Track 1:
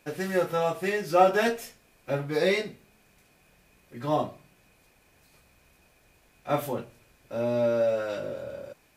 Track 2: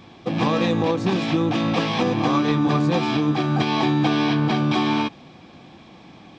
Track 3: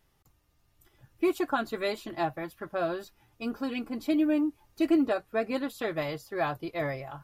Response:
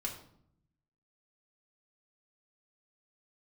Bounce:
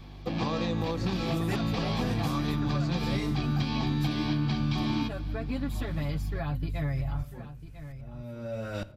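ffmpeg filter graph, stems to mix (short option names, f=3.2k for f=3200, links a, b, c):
-filter_complex "[0:a]aeval=exprs='val(0)*pow(10,-30*if(lt(mod(-1.1*n/s,1),2*abs(-1.1)/1000),1-mod(-1.1*n/s,1)/(2*abs(-1.1)/1000),(mod(-1.1*n/s,1)-2*abs(-1.1)/1000)/(1-2*abs(-1.1)/1000))/20)':c=same,adelay=650,volume=-0.5dB,asplit=3[a][b][c];[b]volume=-10.5dB[d];[c]volume=-9.5dB[e];[1:a]equalizer=f=4.5k:w=6.6:g=8,bandreject=f=50:t=h:w=6,bandreject=f=100:t=h:w=6,bandreject=f=150:t=h:w=6,volume=-6.5dB,asplit=2[f][g];[g]volume=-22.5dB[h];[2:a]aeval=exprs='val(0)+0.00708*(sin(2*PI*50*n/s)+sin(2*PI*2*50*n/s)/2+sin(2*PI*3*50*n/s)/3+sin(2*PI*4*50*n/s)/4+sin(2*PI*5*50*n/s)/5)':c=same,acompressor=threshold=-31dB:ratio=4,aecho=1:1:7.1:0.67,volume=-2dB,asplit=2[i][j];[j]volume=-15dB[k];[3:a]atrim=start_sample=2205[l];[d][l]afir=irnorm=-1:irlink=0[m];[e][h][k]amix=inputs=3:normalize=0,aecho=0:1:997:1[n];[a][f][i][m][n]amix=inputs=5:normalize=0,asubboost=boost=10:cutoff=140,acrossover=split=1400|3300[o][p][q];[o]acompressor=threshold=-26dB:ratio=4[r];[p]acompressor=threshold=-45dB:ratio=4[s];[q]acompressor=threshold=-41dB:ratio=4[t];[r][s][t]amix=inputs=3:normalize=0"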